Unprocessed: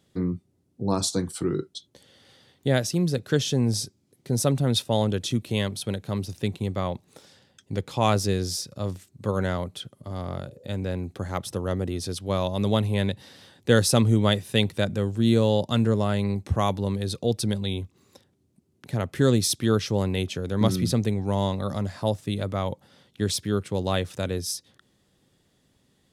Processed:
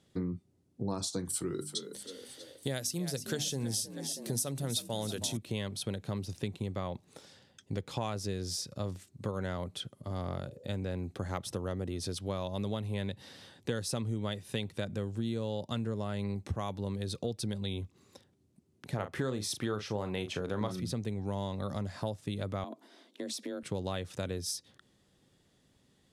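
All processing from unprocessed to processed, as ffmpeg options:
-filter_complex "[0:a]asettb=1/sr,asplit=3[a][b][c];[a]atrim=end=1.254[d];[b]atrim=start=1.25:end=5.37,asetpts=PTS-STARTPTS,afade=t=in:d=0.004:c=qsin,afade=t=out:st=4.116:d=0.004:c=qsin,aemphasis=mode=production:type=75fm,bandreject=f=50:t=h:w=6,bandreject=f=100:t=h:w=6,bandreject=f=150:t=h:w=6,bandreject=f=200:t=h:w=6,bandreject=f=250:t=h:w=6,bandreject=f=300:t=h:w=6,asplit=7[e][f][g][h][i][j][k];[f]adelay=320,afreqshift=51,volume=-14dB[l];[g]adelay=640,afreqshift=102,volume=-19dB[m];[h]adelay=960,afreqshift=153,volume=-24.1dB[n];[i]adelay=1280,afreqshift=204,volume=-29.1dB[o];[j]adelay=1600,afreqshift=255,volume=-34.1dB[p];[k]adelay=1920,afreqshift=306,volume=-39.2dB[q];[e][l][m][n][o][p][q]amix=inputs=7:normalize=0,atrim=end_sample=181692[r];[c]atrim=start=5.366[s];[d][r]acrossfade=d=0.004:c1=hsin:c2=qsin[t];[t][s]acrossfade=d=0.004:c1=qsin:c2=hsin,asettb=1/sr,asplit=3[u][v][w];[u]atrim=end=18.944[x];[v]atrim=start=18.94:end=20.8,asetpts=PTS-STARTPTS,afade=t=in:d=0.004:c=qsin,afade=t=out:st=1.856:d=0.004:c=qsin,equalizer=f=1k:w=0.53:g=9.5,asplit=2[y][z];[z]adelay=38,volume=-10dB[aa];[y][aa]amix=inputs=2:normalize=0,atrim=end_sample=82026[ab];[w]atrim=start=20.796[ac];[x][ab]acrossfade=d=0.004:c1=hsin:c2=qsin[ad];[ad][ac]acrossfade=d=0.004:c1=qsin:c2=hsin,asettb=1/sr,asplit=3[ae][af][ag];[ae]atrim=end=22.644[ah];[af]atrim=start=22.64:end=23.63,asetpts=PTS-STARTPTS,afade=t=in:d=0.004:c=qsin,afade=t=out:st=0.986:d=0.004:c=qsin,acompressor=threshold=-31dB:ratio=10:attack=3.2:release=140:knee=1:detection=peak,afreqshift=130[ai];[ag]atrim=start=23.626[aj];[ah][ai]acrossfade=d=0.004:c1=hsin:c2=qsin[ak];[ak][aj]acrossfade=d=0.004:c1=qsin:c2=hsin,lowpass=12k,acompressor=threshold=-29dB:ratio=6,volume=-2.5dB"

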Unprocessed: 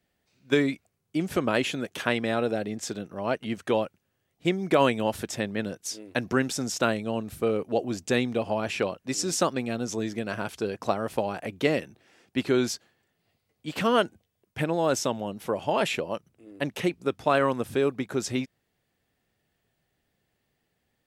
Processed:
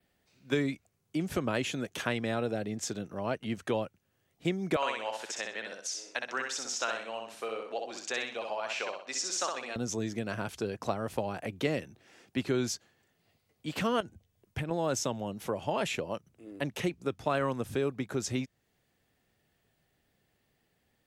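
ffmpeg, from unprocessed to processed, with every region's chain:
-filter_complex "[0:a]asettb=1/sr,asplit=3[a][b][c];[a]atrim=end=4.764[d];[b]atrim=start=4.76:end=9.76,asetpts=PTS-STARTPTS,afade=t=in:d=0.004:c=qsin,afade=t=out:st=4.996:d=0.004:c=qsin,highpass=750,lowpass=6.5k,aecho=1:1:63|126|189|252:0.631|0.208|0.0687|0.0227,atrim=end_sample=220500[e];[c]atrim=start=9.756[f];[d][e]acrossfade=d=0.004:c1=hsin:c2=qsin[g];[g][f]acrossfade=d=0.004:c1=qsin:c2=hsin,asettb=1/sr,asplit=3[h][i][j];[h]atrim=end=14.004[k];[i]atrim=start=14:end=14.71,asetpts=PTS-STARTPTS,afade=t=in:d=0.004:c=qsin,afade=t=out:st=0.706:d=0.004:c=qsin,lowshelf=f=130:g=10,acompressor=threshold=-29dB:ratio=10:attack=3.2:release=140:knee=1:detection=peak[l];[j]atrim=start=14.706[m];[k][l]acrossfade=d=0.004:c1=hsin:c2=qsin[n];[n][m]acrossfade=d=0.004:c1=qsin:c2=hsin,adynamicequalizer=threshold=0.00316:dfrequency=6500:dqfactor=2.9:tfrequency=6500:tqfactor=2.9:attack=5:release=100:ratio=0.375:range=2.5:mode=boostabove:tftype=bell,acrossover=split=130[o][p];[p]acompressor=threshold=-43dB:ratio=1.5[q];[o][q]amix=inputs=2:normalize=0,volume=1.5dB"

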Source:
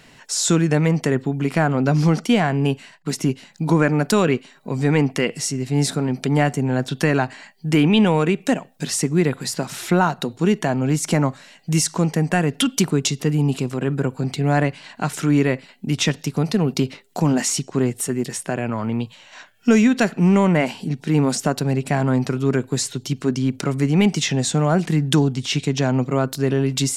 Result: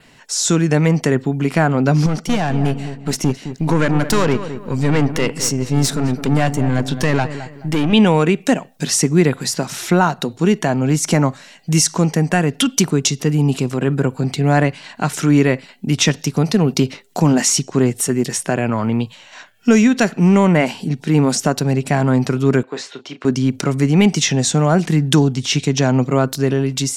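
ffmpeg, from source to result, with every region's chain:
-filter_complex "[0:a]asettb=1/sr,asplit=3[a][b][c];[a]atrim=end=2.064[d];[b]atrim=start=2.06:end=7.93,asetpts=PTS-STARTPTS,afade=t=in:d=0.004:c=qsin,afade=t=out:st=5.866:d=0.004:c=qsin,aeval=exprs='(tanh(7.08*val(0)+0.6)-tanh(0.6))/7.08':c=same,asplit=2[e][f];[f]adelay=213,lowpass=f=1.5k:p=1,volume=-10.5dB,asplit=2[g][h];[h]adelay=213,lowpass=f=1.5k:p=1,volume=0.36,asplit=2[i][j];[j]adelay=213,lowpass=f=1.5k:p=1,volume=0.36,asplit=2[k][l];[l]adelay=213,lowpass=f=1.5k:p=1,volume=0.36[m];[e][g][i][k][m]amix=inputs=5:normalize=0,atrim=end_sample=258867[n];[c]atrim=start=7.926[o];[d][n]acrossfade=d=0.004:c1=hsin:c2=qsin[p];[p][o]acrossfade=d=0.004:c1=qsin:c2=hsin,asettb=1/sr,asplit=3[q][r][s];[q]atrim=end=22.634[t];[r]atrim=start=22.63:end=23.25,asetpts=PTS-STARTPTS,afade=t=in:d=0.004:c=qsin,afade=t=out:st=0.616:d=0.004:c=qsin,highpass=510,lowpass=2.7k,asplit=2[u][v];[v]adelay=34,volume=-10dB[w];[u][w]amix=inputs=2:normalize=0,atrim=end_sample=27342[x];[s]atrim=start=23.246[y];[t][x]acrossfade=d=0.004:c1=hsin:c2=qsin[z];[z][y]acrossfade=d=0.004:c1=qsin:c2=hsin,adynamicequalizer=threshold=0.00708:dfrequency=5900:dqfactor=4.1:tfrequency=5900:tqfactor=4.1:attack=5:release=100:ratio=0.375:range=2.5:mode=boostabove:tftype=bell,dynaudnorm=f=140:g=9:m=7dB"

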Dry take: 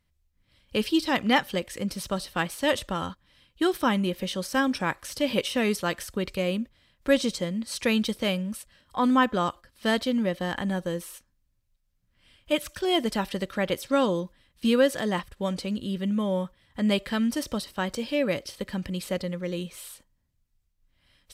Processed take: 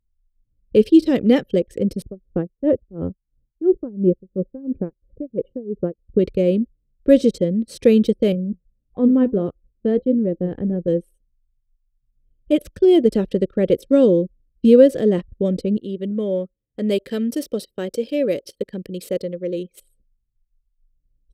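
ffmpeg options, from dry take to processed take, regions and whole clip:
-filter_complex "[0:a]asettb=1/sr,asplit=3[a][b][c];[a]atrim=end=2.024[d];[b]atrim=start=2.02:end=6.19,asetpts=PTS-STARTPTS,afade=t=in:d=0.004:c=qsin,afade=t=out:st=4.166:d=0.004:c=qsin,lowpass=1.1k,lowshelf=f=260:g=4,aeval=exprs='val(0)*pow(10,-21*(0.5-0.5*cos(2*PI*2.9*n/s))/20)':c=same[e];[c]atrim=start=6.186[f];[d][e]acrossfade=d=0.004:c1=hsin:c2=qsin[g];[g][f]acrossfade=d=0.004:c1=qsin:c2=hsin,asettb=1/sr,asplit=3[h][i][j];[h]atrim=end=8.324[k];[i]atrim=start=8.32:end=10.88,asetpts=PTS-STARTPTS,afade=t=in:d=0.004:c=qsin,afade=t=out:st=2.556:d=0.004:c=qsin,lowpass=f=1.3k:p=1,lowshelf=f=200:g=5,flanger=delay=5.8:depth=6.9:regen=74:speed=1.6:shape=triangular[l];[j]atrim=start=10.876[m];[k][l]acrossfade=d=0.004:c1=hsin:c2=qsin[n];[n][m]acrossfade=d=0.004:c1=qsin:c2=hsin,asettb=1/sr,asplit=3[o][p][q];[o]atrim=end=15.774[r];[p]atrim=start=15.77:end=19.8,asetpts=PTS-STARTPTS,afade=t=in:d=0.004:c=qsin,afade=t=out:st=4.026:d=0.004:c=qsin,lowpass=f=3.2k:p=1,aemphasis=mode=production:type=riaa,volume=15.5dB,asoftclip=hard,volume=-15.5dB[s];[q]atrim=start=19.796[t];[r][s]acrossfade=d=0.004:c1=hsin:c2=qsin[u];[u][t]acrossfade=d=0.004:c1=qsin:c2=hsin,anlmdn=1.58,lowshelf=f=650:t=q:w=3:g=12.5,volume=-4.5dB"

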